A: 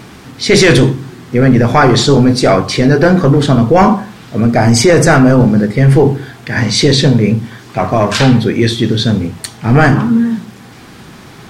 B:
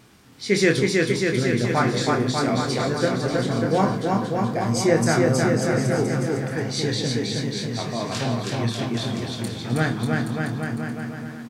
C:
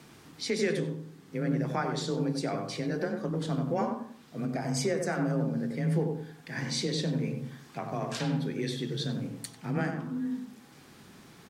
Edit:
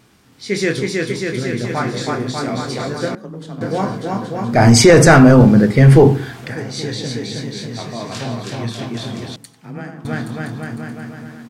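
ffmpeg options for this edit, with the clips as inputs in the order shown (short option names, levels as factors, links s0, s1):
-filter_complex "[2:a]asplit=2[s0][s1];[1:a]asplit=4[s2][s3][s4][s5];[s2]atrim=end=3.152[s6];[s0]atrim=start=3.148:end=3.612[s7];[s3]atrim=start=3.608:end=4.62[s8];[0:a]atrim=start=4.46:end=6.56[s9];[s4]atrim=start=6.4:end=9.362[s10];[s1]atrim=start=9.358:end=10.052[s11];[s5]atrim=start=10.048[s12];[s6][s7]acrossfade=d=0.004:c1=hsin:c2=hsin[s13];[s13][s8]acrossfade=d=0.004:c1=hsin:c2=hsin[s14];[s14][s9]acrossfade=d=0.16:c1=tri:c2=tri[s15];[s15][s10]acrossfade=d=0.16:c1=tri:c2=tri[s16];[s16][s11]acrossfade=d=0.004:c1=hsin:c2=hsin[s17];[s17][s12]acrossfade=d=0.004:c1=hsin:c2=hsin"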